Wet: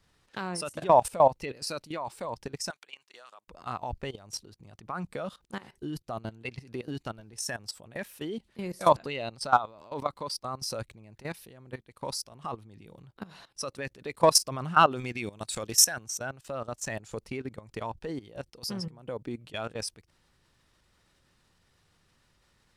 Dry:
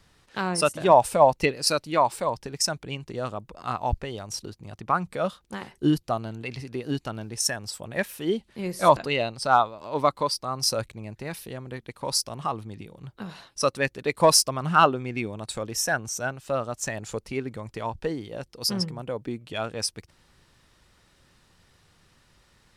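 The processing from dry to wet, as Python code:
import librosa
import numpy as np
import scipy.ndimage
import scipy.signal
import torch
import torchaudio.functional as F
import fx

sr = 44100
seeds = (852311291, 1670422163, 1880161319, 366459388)

y = fx.highpass(x, sr, hz=1300.0, slope=12, at=(2.7, 3.48))
y = fx.high_shelf(y, sr, hz=2100.0, db=11.5, at=(14.91, 16.05))
y = fx.level_steps(y, sr, step_db=17)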